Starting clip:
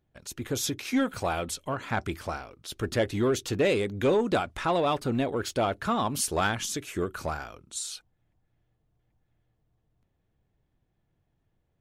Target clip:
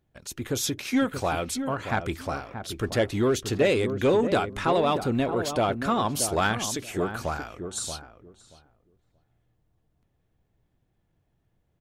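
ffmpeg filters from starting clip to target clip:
ffmpeg -i in.wav -filter_complex "[0:a]asplit=2[link_01][link_02];[link_02]adelay=630,lowpass=frequency=890:poles=1,volume=-7.5dB,asplit=2[link_03][link_04];[link_04]adelay=630,lowpass=frequency=890:poles=1,volume=0.18,asplit=2[link_05][link_06];[link_06]adelay=630,lowpass=frequency=890:poles=1,volume=0.18[link_07];[link_01][link_03][link_05][link_07]amix=inputs=4:normalize=0,volume=2dB" out.wav

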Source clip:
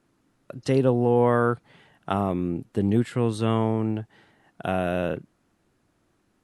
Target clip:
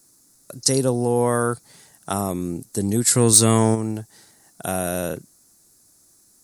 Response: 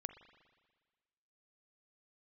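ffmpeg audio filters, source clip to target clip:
-filter_complex "[0:a]aexciter=amount=14.5:drive=6.6:freq=4600,asplit=3[link_01][link_02][link_03];[link_01]afade=type=out:start_time=3.06:duration=0.02[link_04];[link_02]acontrast=81,afade=type=in:start_time=3.06:duration=0.02,afade=type=out:start_time=3.74:duration=0.02[link_05];[link_03]afade=type=in:start_time=3.74:duration=0.02[link_06];[link_04][link_05][link_06]amix=inputs=3:normalize=0"

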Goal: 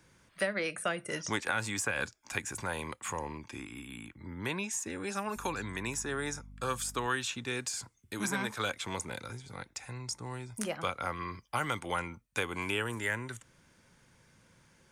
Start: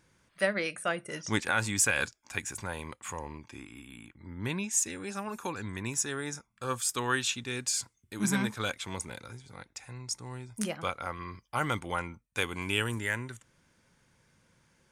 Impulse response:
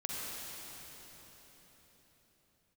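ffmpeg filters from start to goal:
-filter_complex "[0:a]acrossover=split=85|370|1700[link_01][link_02][link_03][link_04];[link_01]acompressor=threshold=-60dB:ratio=4[link_05];[link_02]acompressor=threshold=-45dB:ratio=4[link_06];[link_03]acompressor=threshold=-36dB:ratio=4[link_07];[link_04]acompressor=threshold=-40dB:ratio=4[link_08];[link_05][link_06][link_07][link_08]amix=inputs=4:normalize=0,asettb=1/sr,asplit=3[link_09][link_10][link_11];[link_09]atrim=end=5.364[link_12];[link_10]atrim=start=5.36:end=7.07,asetpts=PTS-STARTPTS,afade=type=in:duration=0.004:curve=qsin,afade=type=out:start_time=1.706:duration=0.004:curve=qsin,aeval=exprs='val(0)+0.00251*(sin(2*PI*50*n/s)+sin(2*PI*2*50*n/s)/2+sin(2*PI*3*50*n/s)/3+sin(2*PI*4*50*n/s)/4+sin(2*PI*5*50*n/s)/5)':channel_layout=same[link_13];[link_11]atrim=start=7.066[link_14];[link_12][link_13]acrossfade=duration=0.004:curve1=hsin:curve2=qsin[link_15];[link_15][link_14]acrossfade=duration=0.004:curve1=qsin:curve2=hsin,volume=3.5dB"

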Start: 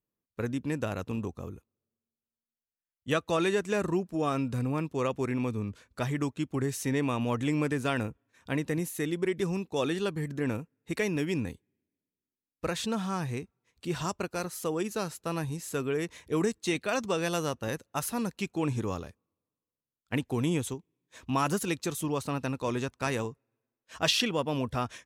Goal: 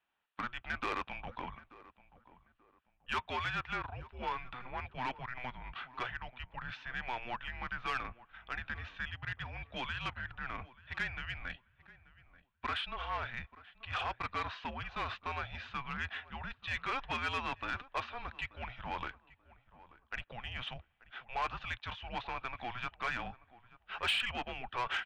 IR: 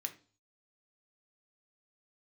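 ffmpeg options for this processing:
-filter_complex "[0:a]bandreject=frequency=2400:width=9.4,highpass=frequency=170:width_type=q:width=0.5412,highpass=frequency=170:width_type=q:width=1.307,lowpass=frequency=3500:width_type=q:width=0.5176,lowpass=frequency=3500:width_type=q:width=0.7071,lowpass=frequency=3500:width_type=q:width=1.932,afreqshift=-250,asubboost=boost=4:cutoff=120,areverse,acompressor=threshold=-34dB:ratio=16,areverse,asplit=2[link_01][link_02];[link_02]highpass=frequency=720:poles=1,volume=20dB,asoftclip=type=tanh:threshold=-27dB[link_03];[link_01][link_03]amix=inputs=2:normalize=0,lowpass=frequency=1900:poles=1,volume=-6dB,tiltshelf=frequency=730:gain=-8.5,asplit=2[link_04][link_05];[link_05]adelay=884,lowpass=frequency=1400:poles=1,volume=-18dB,asplit=2[link_06][link_07];[link_07]adelay=884,lowpass=frequency=1400:poles=1,volume=0.31,asplit=2[link_08][link_09];[link_09]adelay=884,lowpass=frequency=1400:poles=1,volume=0.31[link_10];[link_04][link_06][link_08][link_10]amix=inputs=4:normalize=0,volume=1dB"

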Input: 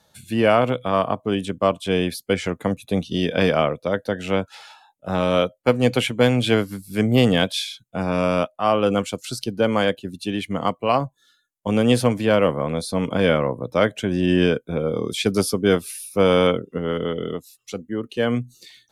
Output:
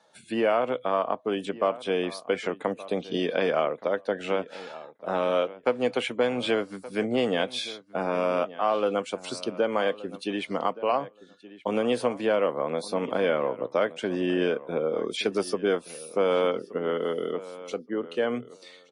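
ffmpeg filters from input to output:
ffmpeg -i in.wav -filter_complex "[0:a]highpass=360,highshelf=frequency=2800:gain=-11.5,acompressor=threshold=-28dB:ratio=2,asplit=2[link_01][link_02];[link_02]adelay=1173,lowpass=frequency=3400:poles=1,volume=-17dB,asplit=2[link_03][link_04];[link_04]adelay=1173,lowpass=frequency=3400:poles=1,volume=0.17[link_05];[link_03][link_05]amix=inputs=2:normalize=0[link_06];[link_01][link_06]amix=inputs=2:normalize=0,volume=3dB" -ar 24000 -c:a libmp3lame -b:a 40k out.mp3

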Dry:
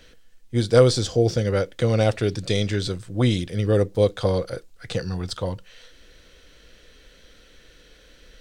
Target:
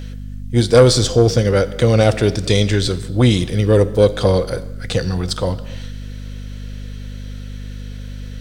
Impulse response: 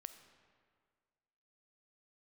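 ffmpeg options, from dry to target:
-filter_complex "[0:a]acontrast=89,aeval=exprs='val(0)+0.0398*(sin(2*PI*50*n/s)+sin(2*PI*2*50*n/s)/2+sin(2*PI*3*50*n/s)/3+sin(2*PI*4*50*n/s)/4+sin(2*PI*5*50*n/s)/5)':channel_layout=same,asplit=2[link_01][link_02];[1:a]atrim=start_sample=2205,afade=type=out:start_time=0.38:duration=0.01,atrim=end_sample=17199,highshelf=frequency=6900:gain=7[link_03];[link_02][link_03]afir=irnorm=-1:irlink=0,volume=7.5dB[link_04];[link_01][link_04]amix=inputs=2:normalize=0,volume=-6.5dB"

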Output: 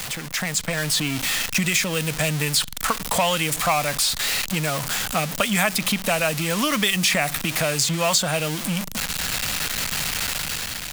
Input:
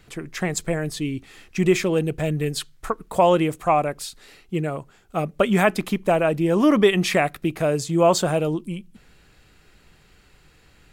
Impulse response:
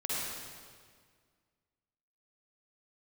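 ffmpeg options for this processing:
-filter_complex "[0:a]aeval=exprs='val(0)+0.5*0.0398*sgn(val(0))':channel_layout=same,highshelf=frequency=3200:gain=11,acrossover=split=140|1500|4900[link_01][link_02][link_03][link_04];[link_01]acompressor=threshold=-44dB:ratio=4[link_05];[link_02]acompressor=threshold=-27dB:ratio=4[link_06];[link_03]acompressor=threshold=-28dB:ratio=4[link_07];[link_04]acompressor=threshold=-31dB:ratio=4[link_08];[link_05][link_06][link_07][link_08]amix=inputs=4:normalize=0,equalizer=frequency=370:width=2.9:gain=-14.5,dynaudnorm=framelen=140:gausssize=9:maxgain=6dB"

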